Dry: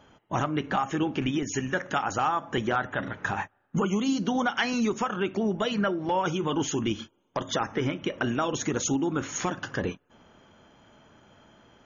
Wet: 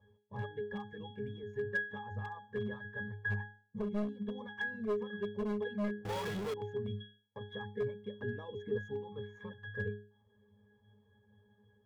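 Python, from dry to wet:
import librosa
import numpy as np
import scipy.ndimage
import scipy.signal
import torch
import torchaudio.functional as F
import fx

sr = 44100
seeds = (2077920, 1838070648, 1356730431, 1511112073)

y = scipy.signal.medfilt(x, 9)
y = fx.dereverb_blind(y, sr, rt60_s=0.64)
y = fx.octave_resonator(y, sr, note='G#', decay_s=0.42)
y = np.clip(10.0 ** (36.0 / 20.0) * y, -1.0, 1.0) / 10.0 ** (36.0 / 20.0)
y = y + 0.64 * np.pad(y, (int(1.8 * sr / 1000.0), 0))[:len(y)]
y = fx.power_curve(y, sr, exponent=0.35, at=(6.05, 6.54))
y = fx.peak_eq(y, sr, hz=320.0, db=9.5, octaves=0.77, at=(8.21, 8.81))
y = y * 10.0 ** (6.0 / 20.0)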